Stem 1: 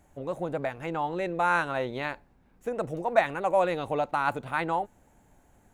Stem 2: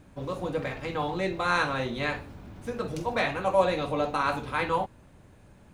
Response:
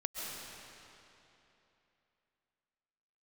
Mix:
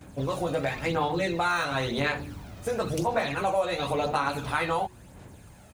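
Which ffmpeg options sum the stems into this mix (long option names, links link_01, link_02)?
-filter_complex "[0:a]volume=2.5dB[link_01];[1:a]deesser=0.75,highshelf=frequency=3900:gain=10.5,aphaser=in_gain=1:out_gain=1:delay=1.6:decay=0.5:speed=0.96:type=sinusoidal,adelay=11,volume=1.5dB[link_02];[link_01][link_02]amix=inputs=2:normalize=0,highpass=46,bandreject=frequency=73.2:width_type=h:width=4,bandreject=frequency=146.4:width_type=h:width=4,bandreject=frequency=219.6:width_type=h:width=4,bandreject=frequency=292.8:width_type=h:width=4,bandreject=frequency=366:width_type=h:width=4,acompressor=threshold=-24dB:ratio=4"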